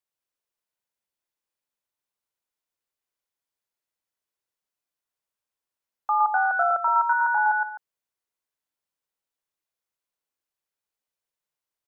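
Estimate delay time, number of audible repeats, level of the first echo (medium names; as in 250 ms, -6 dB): 114 ms, 3, -4.0 dB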